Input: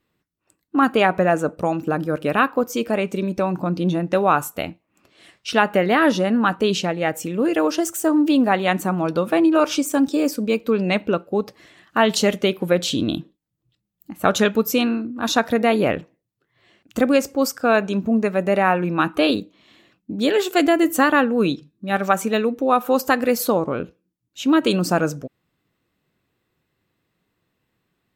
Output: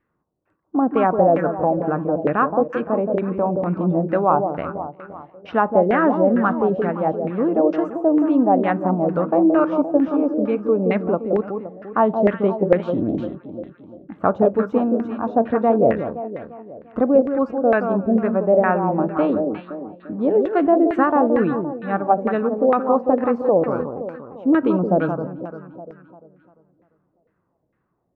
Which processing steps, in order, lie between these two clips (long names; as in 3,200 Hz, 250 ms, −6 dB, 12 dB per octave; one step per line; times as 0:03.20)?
dynamic equaliser 1,500 Hz, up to −5 dB, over −32 dBFS, Q 0.94
delay that swaps between a low-pass and a high-pass 173 ms, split 1,300 Hz, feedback 65%, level −6 dB
auto-filter low-pass saw down 2.2 Hz 520–1,900 Hz
high-shelf EQ 2,600 Hz −10.5 dB
level −1 dB